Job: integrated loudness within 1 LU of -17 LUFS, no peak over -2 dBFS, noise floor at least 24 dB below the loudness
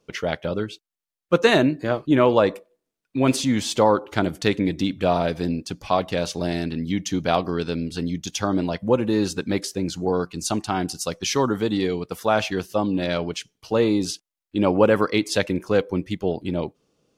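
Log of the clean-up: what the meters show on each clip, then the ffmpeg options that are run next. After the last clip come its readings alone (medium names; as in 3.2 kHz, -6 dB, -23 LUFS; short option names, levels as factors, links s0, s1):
loudness -23.0 LUFS; peak level -3.5 dBFS; loudness target -17.0 LUFS
-> -af "volume=2,alimiter=limit=0.794:level=0:latency=1"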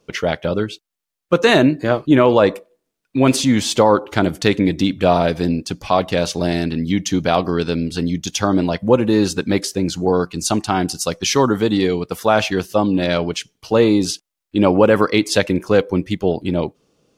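loudness -17.5 LUFS; peak level -2.0 dBFS; noise floor -80 dBFS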